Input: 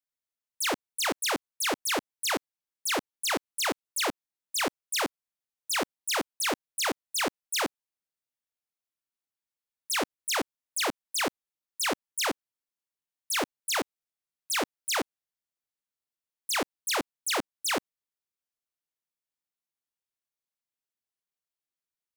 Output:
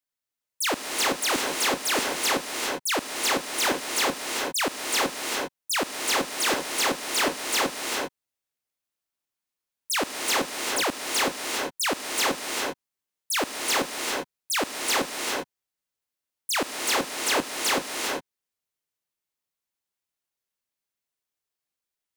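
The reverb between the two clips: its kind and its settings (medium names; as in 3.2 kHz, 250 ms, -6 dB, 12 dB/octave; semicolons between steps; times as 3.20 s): gated-style reverb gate 430 ms rising, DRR 1 dB; trim +2.5 dB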